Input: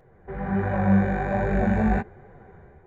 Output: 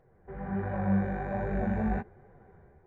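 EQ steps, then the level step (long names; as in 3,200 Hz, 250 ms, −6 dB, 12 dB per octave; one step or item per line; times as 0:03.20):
high-shelf EQ 3,200 Hz −10 dB
−7.5 dB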